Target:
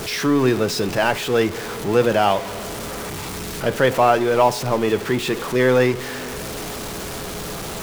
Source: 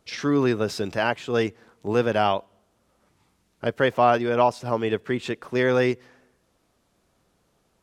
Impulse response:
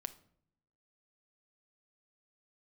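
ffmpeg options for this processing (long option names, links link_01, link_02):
-filter_complex "[0:a]aeval=exprs='val(0)+0.5*0.0447*sgn(val(0))':channel_layout=same,asplit=2[link_01][link_02];[1:a]atrim=start_sample=2205[link_03];[link_02][link_03]afir=irnorm=-1:irlink=0,volume=11.5dB[link_04];[link_01][link_04]amix=inputs=2:normalize=0,aeval=exprs='val(0)+0.0355*sin(2*PI*420*n/s)':channel_layout=same,volume=-8.5dB"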